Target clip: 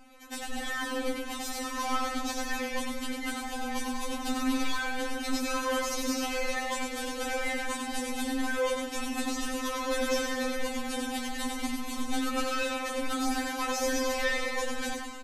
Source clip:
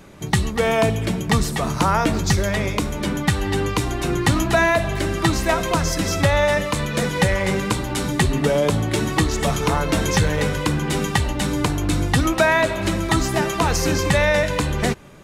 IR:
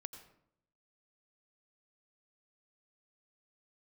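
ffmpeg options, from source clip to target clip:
-filter_complex "[0:a]volume=18.5dB,asoftclip=hard,volume=-18.5dB,flanger=delay=9:depth=2.2:regen=55:speed=0.47:shape=triangular,asplit=9[link_01][link_02][link_03][link_04][link_05][link_06][link_07][link_08][link_09];[link_02]adelay=100,afreqshift=-52,volume=-7dB[link_10];[link_03]adelay=200,afreqshift=-104,volume=-11.2dB[link_11];[link_04]adelay=300,afreqshift=-156,volume=-15.3dB[link_12];[link_05]adelay=400,afreqshift=-208,volume=-19.5dB[link_13];[link_06]adelay=500,afreqshift=-260,volume=-23.6dB[link_14];[link_07]adelay=600,afreqshift=-312,volume=-27.8dB[link_15];[link_08]adelay=700,afreqshift=-364,volume=-31.9dB[link_16];[link_09]adelay=800,afreqshift=-416,volume=-36.1dB[link_17];[link_01][link_10][link_11][link_12][link_13][link_14][link_15][link_16][link_17]amix=inputs=9:normalize=0,asplit=2[link_18][link_19];[1:a]atrim=start_sample=2205,adelay=94[link_20];[link_19][link_20]afir=irnorm=-1:irlink=0,volume=-1.5dB[link_21];[link_18][link_21]amix=inputs=2:normalize=0,aresample=32000,aresample=44100,afftfilt=real='re*3.46*eq(mod(b,12),0)':imag='im*3.46*eq(mod(b,12),0)':win_size=2048:overlap=0.75,volume=-2dB"

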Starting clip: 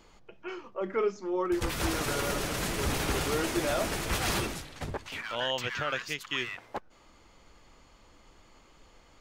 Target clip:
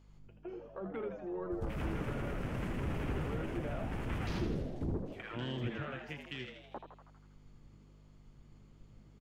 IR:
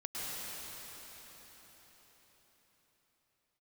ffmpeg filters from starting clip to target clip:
-filter_complex "[0:a]afwtdn=0.0178,asettb=1/sr,asplit=3[link_01][link_02][link_03];[link_01]atrim=end=4.404[link_04];[link_02]atrim=start=4.4:end=5.76,asetpts=PTS-STARTPTS,afade=type=in:duration=0.004:curve=qsin,afade=type=out:start_time=1.356:duration=0.004:curve=qsin,lowshelf=frequency=440:width_type=q:width=3:gain=8[link_05];[link_03]atrim=start=5.756[link_06];[link_04][link_05]acrossfade=duration=0.004:curve1=hsin:curve2=qsin[link_07];[link_07][link_06]acrossfade=duration=0.004:curve1=qsin:curve2=hsin,acrossover=split=220[link_08][link_09];[link_08]asoftclip=type=tanh:threshold=-35dB[link_10];[link_09]acompressor=threshold=-47dB:ratio=4[link_11];[link_10][link_11]amix=inputs=2:normalize=0,aeval=exprs='val(0)+0.000891*(sin(2*PI*50*n/s)+sin(2*PI*2*50*n/s)/2+sin(2*PI*3*50*n/s)/3+sin(2*PI*4*50*n/s)/4+sin(2*PI*5*50*n/s)/5)':channel_layout=same,asplit=8[link_12][link_13][link_14][link_15][link_16][link_17][link_18][link_19];[link_13]adelay=80,afreqshift=100,volume=-8dB[link_20];[link_14]adelay=160,afreqshift=200,volume=-12.6dB[link_21];[link_15]adelay=240,afreqshift=300,volume=-17.2dB[link_22];[link_16]adelay=320,afreqshift=400,volume=-21.7dB[link_23];[link_17]adelay=400,afreqshift=500,volume=-26.3dB[link_24];[link_18]adelay=480,afreqshift=600,volume=-30.9dB[link_25];[link_19]adelay=560,afreqshift=700,volume=-35.5dB[link_26];[link_12][link_20][link_21][link_22][link_23][link_24][link_25][link_26]amix=inputs=8:normalize=0,volume=1.5dB"

